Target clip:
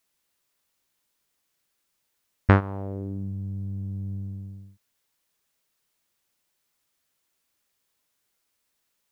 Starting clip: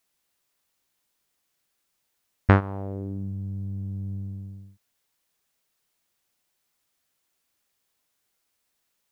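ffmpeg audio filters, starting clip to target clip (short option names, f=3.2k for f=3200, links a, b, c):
-af "bandreject=f=740:w=15"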